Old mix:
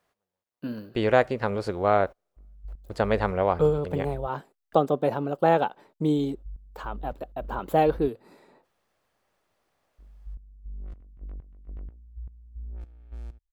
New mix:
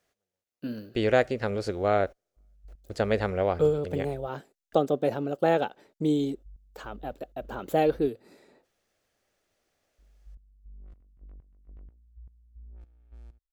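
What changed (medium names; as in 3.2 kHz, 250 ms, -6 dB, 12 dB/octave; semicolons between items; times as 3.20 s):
speech: add fifteen-band graphic EQ 160 Hz -4 dB, 1 kHz -10 dB, 6.3 kHz +5 dB; background -9.5 dB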